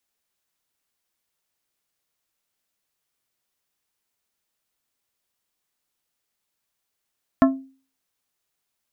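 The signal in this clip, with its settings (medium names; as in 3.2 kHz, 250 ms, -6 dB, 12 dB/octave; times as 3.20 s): glass hit plate, lowest mode 267 Hz, modes 5, decay 0.40 s, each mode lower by 4 dB, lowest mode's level -9.5 dB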